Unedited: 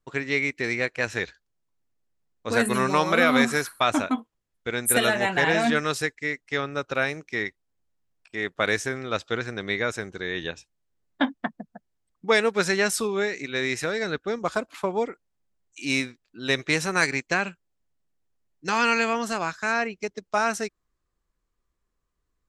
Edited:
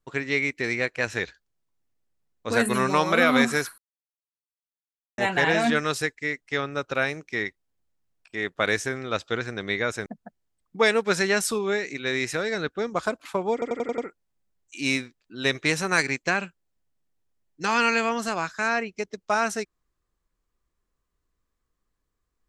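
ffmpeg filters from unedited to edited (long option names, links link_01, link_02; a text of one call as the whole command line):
ffmpeg -i in.wav -filter_complex "[0:a]asplit=9[link_01][link_02][link_03][link_04][link_05][link_06][link_07][link_08][link_09];[link_01]atrim=end=3.78,asetpts=PTS-STARTPTS,afade=type=out:start_time=3.776:duration=0.004:curve=hsin[link_10];[link_02]atrim=start=3.78:end=5.18,asetpts=PTS-STARTPTS,volume=0[link_11];[link_03]atrim=start=5.18:end=10.062,asetpts=PTS-STARTPTS,afade=type=in:duration=0.004:curve=hsin[link_12];[link_04]atrim=start=11.548:end=15.112[link_13];[link_05]atrim=start=15.018:end=15.112[link_14];[link_06]atrim=start=15.018:end=15.112[link_15];[link_07]atrim=start=15.018:end=15.112[link_16];[link_08]atrim=start=15.018:end=15.112[link_17];[link_09]atrim=start=15.018[link_18];[link_10][link_11][link_12]concat=n=3:v=0:a=1[link_19];[link_19][link_13]acrossfade=duration=0.004:curve1=hsin:curve2=hsin[link_20];[link_20][link_14]acrossfade=duration=0.004:curve1=hsin:curve2=hsin[link_21];[link_21][link_15]acrossfade=duration=0.004:curve1=hsin:curve2=hsin[link_22];[link_22][link_16]acrossfade=duration=0.004:curve1=hsin:curve2=hsin[link_23];[link_23][link_17]acrossfade=duration=0.004:curve1=hsin:curve2=hsin[link_24];[link_24][link_18]acrossfade=duration=0.004:curve1=hsin:curve2=hsin" out.wav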